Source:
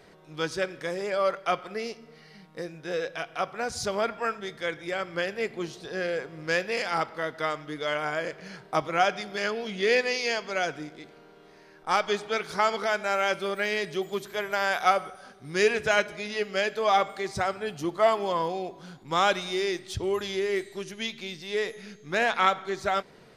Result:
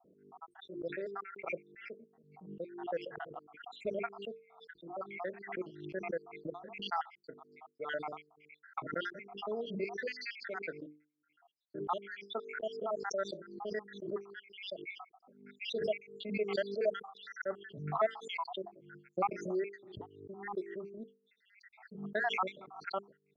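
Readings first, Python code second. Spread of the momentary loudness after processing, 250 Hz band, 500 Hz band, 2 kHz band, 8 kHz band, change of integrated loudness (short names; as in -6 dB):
17 LU, -9.0 dB, -10.5 dB, -14.0 dB, -18.5 dB, -11.5 dB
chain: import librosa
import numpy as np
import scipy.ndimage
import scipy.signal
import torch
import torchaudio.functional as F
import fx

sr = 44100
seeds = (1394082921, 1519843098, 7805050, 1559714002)

y = fx.spec_dropout(x, sr, seeds[0], share_pct=81)
y = scipy.signal.sosfilt(scipy.signal.butter(2, 210.0, 'highpass', fs=sr, output='sos'), y)
y = fx.env_lowpass(y, sr, base_hz=320.0, full_db=-28.5)
y = fx.spacing_loss(y, sr, db_at_10k=32)
y = fx.hum_notches(y, sr, base_hz=50, count=9)
y = fx.pre_swell(y, sr, db_per_s=76.0)
y = y * librosa.db_to_amplitude(-2.5)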